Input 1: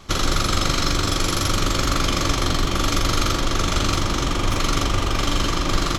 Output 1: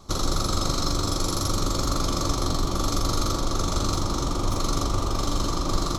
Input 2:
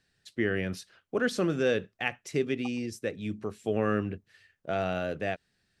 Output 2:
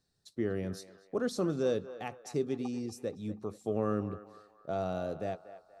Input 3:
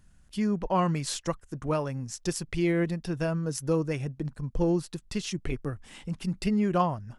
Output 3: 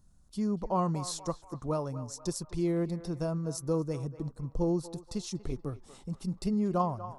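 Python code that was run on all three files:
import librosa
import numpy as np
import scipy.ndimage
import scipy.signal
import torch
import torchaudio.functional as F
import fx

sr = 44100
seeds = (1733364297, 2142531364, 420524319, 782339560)

y = fx.band_shelf(x, sr, hz=2200.0, db=-12.5, octaves=1.3)
y = fx.notch(y, sr, hz=4800.0, q=30.0)
y = fx.echo_banded(y, sr, ms=239, feedback_pct=50, hz=1100.0, wet_db=-11.5)
y = y * librosa.db_to_amplitude(-3.5)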